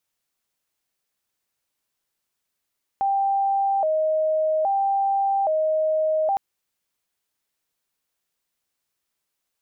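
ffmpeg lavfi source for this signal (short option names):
-f lavfi -i "aevalsrc='0.119*sin(2*PI*(707*t+81/0.61*(0.5-abs(mod(0.61*t,1)-0.5))))':d=3.36:s=44100"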